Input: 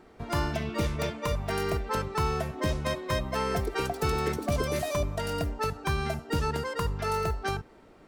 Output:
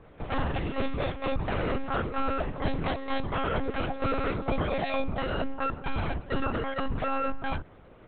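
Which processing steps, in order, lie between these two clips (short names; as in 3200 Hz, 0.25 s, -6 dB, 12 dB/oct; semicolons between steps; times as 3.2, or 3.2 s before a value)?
in parallel at -1 dB: limiter -24.5 dBFS, peak gain reduction 7.5 dB; on the sum: frequency shift +42 Hz; monotone LPC vocoder at 8 kHz 270 Hz; gain -3 dB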